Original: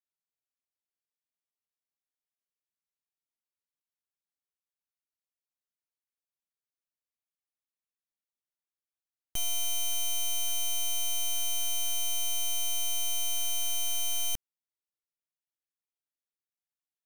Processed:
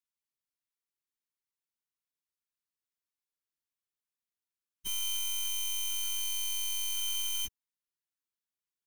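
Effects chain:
elliptic band-stop filter 430–920 Hz, stop band 50 dB
time stretch by phase vocoder 0.52×
level +2 dB

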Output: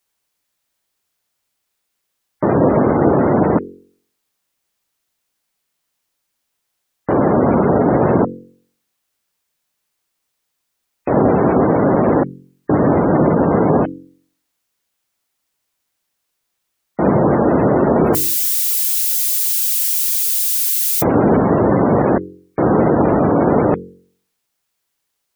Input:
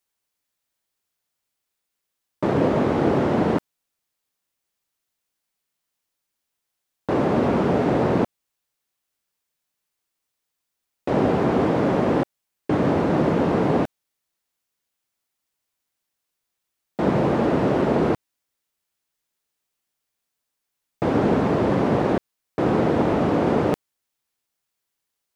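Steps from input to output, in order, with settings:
0:17.98–0:21.37: spike at every zero crossing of −20.5 dBFS
gate on every frequency bin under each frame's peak −25 dB strong
hum removal 45.56 Hz, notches 11
level +7 dB

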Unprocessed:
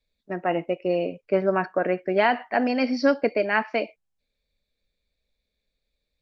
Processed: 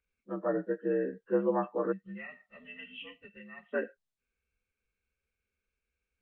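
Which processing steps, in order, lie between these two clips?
partials spread apart or drawn together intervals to 82%
gain on a spectral selection 0:01.92–0:03.73, 200–1,800 Hz −27 dB
level −5 dB

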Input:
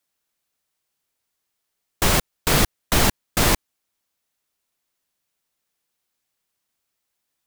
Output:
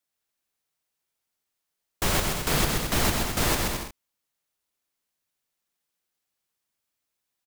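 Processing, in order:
bouncing-ball delay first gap 130 ms, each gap 0.7×, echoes 5
level −6.5 dB

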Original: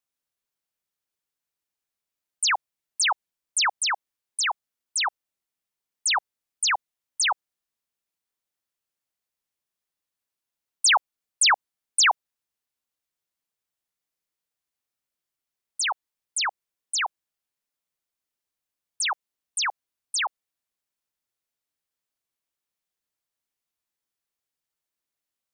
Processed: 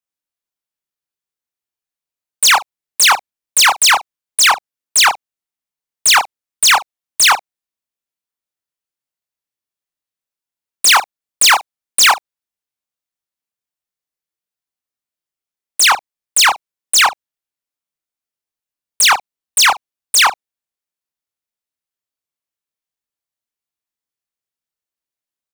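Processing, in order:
leveller curve on the samples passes 5
ambience of single reflections 26 ms −3.5 dB, 68 ms −17.5 dB
level +5.5 dB

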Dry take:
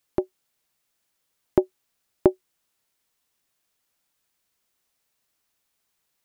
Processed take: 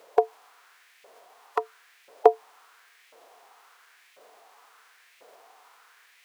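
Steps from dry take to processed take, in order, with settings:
compressor on every frequency bin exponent 0.6
auto-filter high-pass saw up 0.96 Hz 510–2,300 Hz
phase-vocoder pitch shift with formants kept +3 semitones
level +4 dB

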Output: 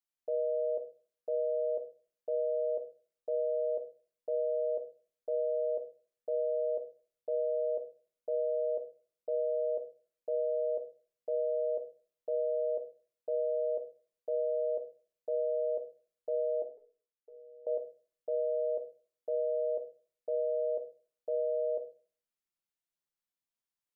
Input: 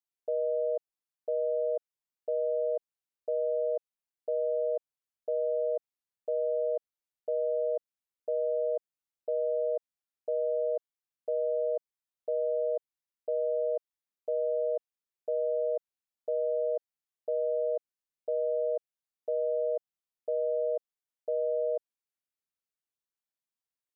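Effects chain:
0:16.62–0:17.67: tuned comb filter 430 Hz, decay 0.18 s, harmonics all, mix 100%
rectangular room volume 240 cubic metres, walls furnished, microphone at 0.86 metres
level −3 dB

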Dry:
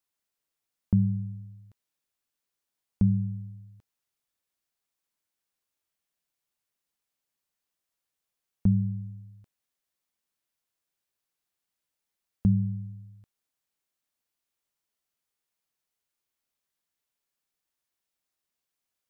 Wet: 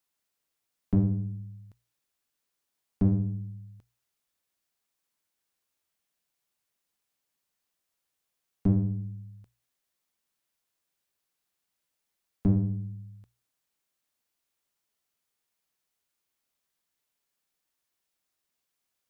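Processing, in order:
one-sided soft clipper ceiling −29.5 dBFS
mains-hum notches 60/120 Hz
level +3 dB

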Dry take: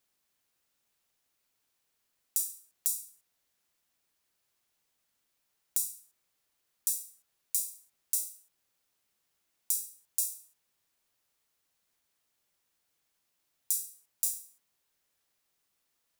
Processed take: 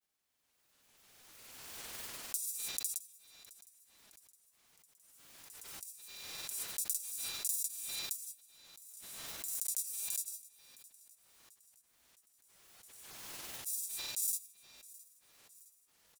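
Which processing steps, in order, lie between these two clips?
spring reverb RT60 3.3 s, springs 35 ms, chirp 35 ms, DRR 9 dB
granular cloud, grains 20 per second, pitch spread up and down by 0 semitones
repeating echo 664 ms, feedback 57%, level −20.5 dB
background raised ahead of every attack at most 24 dB per second
level −5 dB

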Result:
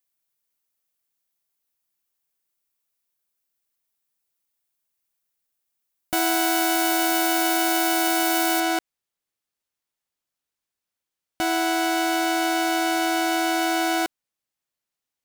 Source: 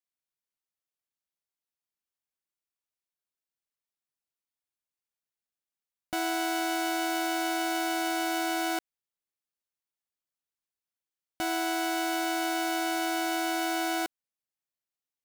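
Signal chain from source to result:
high-shelf EQ 9,500 Hz +11 dB, from 0:08.60 −2.5 dB
level +7 dB

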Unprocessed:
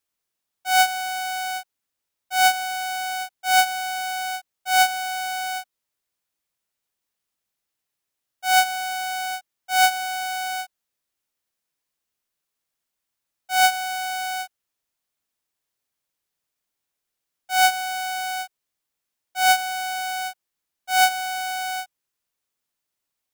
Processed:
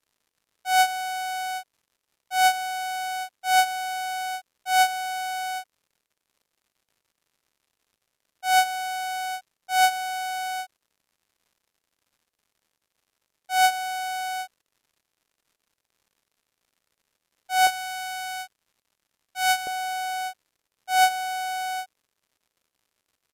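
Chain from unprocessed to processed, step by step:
parametric band 470 Hz +8.5 dB 0.96 octaves, from 0:17.67 −3.5 dB, from 0:19.67 +10.5 dB
surface crackle 170 per second −51 dBFS
downsampling to 32,000 Hz
level −4 dB

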